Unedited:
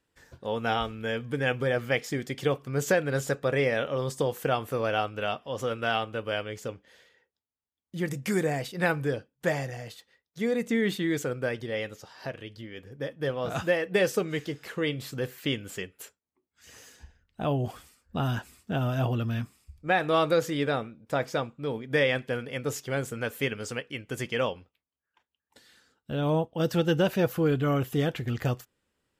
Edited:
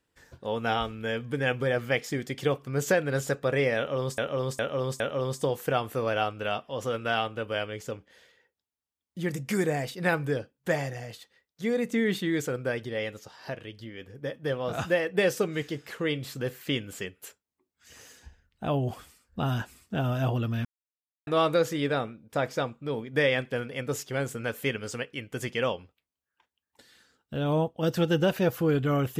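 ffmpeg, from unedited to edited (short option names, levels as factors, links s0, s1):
-filter_complex "[0:a]asplit=6[s0][s1][s2][s3][s4][s5];[s0]atrim=end=4.182[s6];[s1]atrim=start=3.768:end=4.182[s7];[s2]atrim=start=3.768:end=4.182[s8];[s3]atrim=start=3.768:end=19.42,asetpts=PTS-STARTPTS,afade=t=out:st=15.648:d=0.004:c=hsin[s9];[s4]atrim=start=19.42:end=20.04,asetpts=PTS-STARTPTS,volume=0[s10];[s5]atrim=start=20.04,asetpts=PTS-STARTPTS,afade=t=in:d=0.004:c=hsin[s11];[s6][s7]acrossfade=d=0.004:c1=hsin:c2=hsin[s12];[s12][s8]acrossfade=d=0.004:c1=hsin:c2=hsin[s13];[s9][s10][s11]concat=n=3:v=0:a=1[s14];[s13][s14]acrossfade=d=0.004:c1=hsin:c2=hsin"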